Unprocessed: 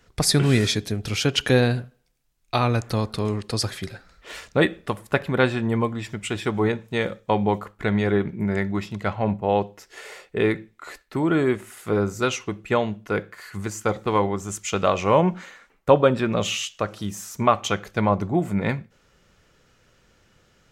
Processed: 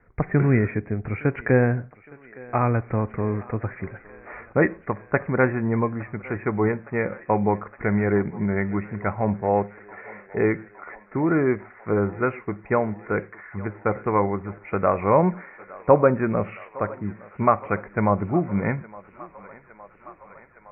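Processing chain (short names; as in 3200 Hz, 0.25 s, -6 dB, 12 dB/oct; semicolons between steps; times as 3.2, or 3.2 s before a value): steep low-pass 2300 Hz 96 dB/oct; thinning echo 0.863 s, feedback 81%, high-pass 390 Hz, level -19.5 dB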